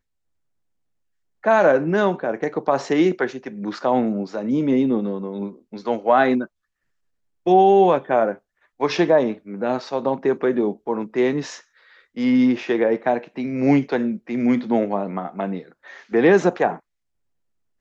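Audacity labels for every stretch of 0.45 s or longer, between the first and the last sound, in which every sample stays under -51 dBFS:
6.470000	7.460000	silence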